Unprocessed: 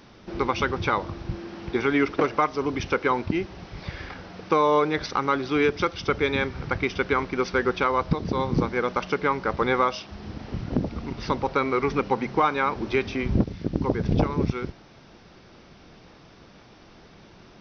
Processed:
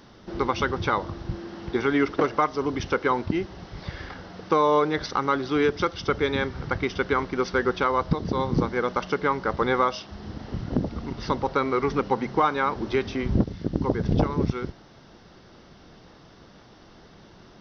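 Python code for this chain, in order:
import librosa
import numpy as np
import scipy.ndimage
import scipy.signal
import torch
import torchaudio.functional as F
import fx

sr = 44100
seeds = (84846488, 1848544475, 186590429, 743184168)

y = fx.peak_eq(x, sr, hz=2400.0, db=-9.0, octaves=0.21)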